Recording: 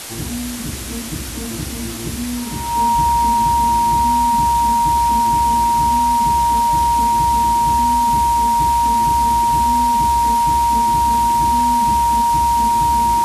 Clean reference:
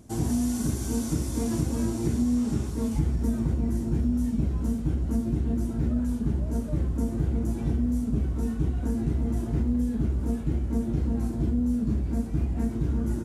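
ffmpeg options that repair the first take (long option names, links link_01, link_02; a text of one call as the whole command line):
ffmpeg -i in.wav -af "bandreject=frequency=940:width=30,afwtdn=0.035" out.wav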